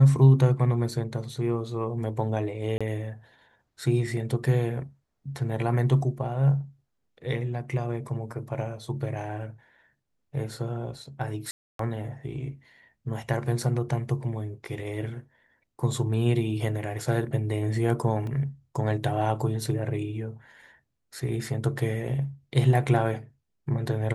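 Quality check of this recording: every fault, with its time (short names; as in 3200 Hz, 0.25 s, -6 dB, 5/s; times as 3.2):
2.78–2.81 gap 26 ms
11.51–11.79 gap 0.283 s
18.27 gap 2.1 ms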